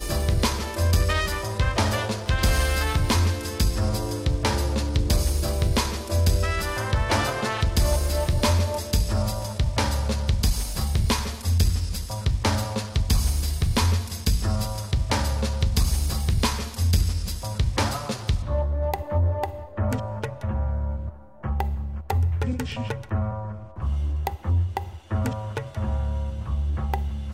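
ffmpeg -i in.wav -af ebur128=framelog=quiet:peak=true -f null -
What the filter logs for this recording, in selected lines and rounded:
Integrated loudness:
  I:         -25.3 LUFS
  Threshold: -35.4 LUFS
Loudness range:
  LRA:         4.6 LU
  Threshold: -45.4 LUFS
  LRA low:   -28.4 LUFS
  LRA high:  -23.8 LUFS
True peak:
  Peak:      -11.7 dBFS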